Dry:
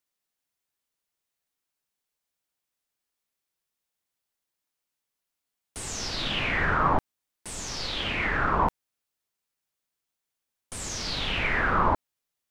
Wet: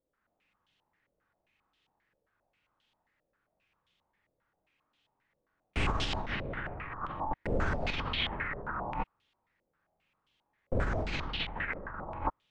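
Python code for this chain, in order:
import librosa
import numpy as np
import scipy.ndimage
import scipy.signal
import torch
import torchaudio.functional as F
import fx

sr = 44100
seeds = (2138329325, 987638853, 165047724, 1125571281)

p1 = fx.low_shelf(x, sr, hz=250.0, db=9.0)
p2 = p1 + fx.room_early_taps(p1, sr, ms=(42, 67), db=(-4.5, -7.0), dry=0)
p3 = fx.rev_gated(p2, sr, seeds[0], gate_ms=290, shape='rising', drr_db=-2.5)
p4 = fx.over_compress(p3, sr, threshold_db=-30.0, ratio=-1.0)
p5 = fx.filter_held_lowpass(p4, sr, hz=7.5, low_hz=540.0, high_hz=3200.0)
y = F.gain(torch.from_numpy(p5), -6.5).numpy()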